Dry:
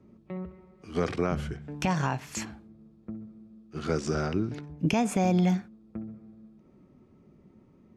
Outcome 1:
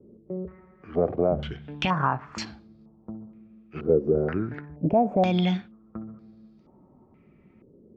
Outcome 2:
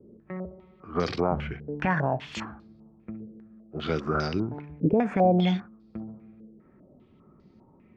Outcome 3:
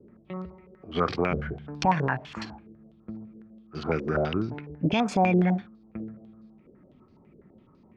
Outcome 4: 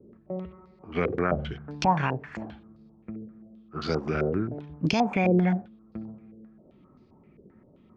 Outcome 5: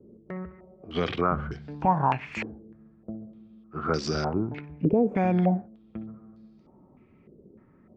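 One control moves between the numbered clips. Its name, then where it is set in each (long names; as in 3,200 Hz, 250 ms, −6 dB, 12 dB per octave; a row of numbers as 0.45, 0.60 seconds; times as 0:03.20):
low-pass on a step sequencer, speed: 2.1, 5, 12, 7.6, 3.3 Hertz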